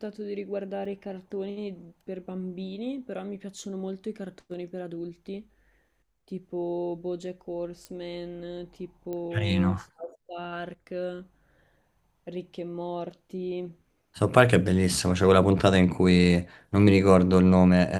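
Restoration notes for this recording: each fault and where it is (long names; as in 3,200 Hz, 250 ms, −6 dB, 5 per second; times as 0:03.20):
0:00.85: drop-out 4 ms
0:07.85: click −24 dBFS
0:09.13: click −23 dBFS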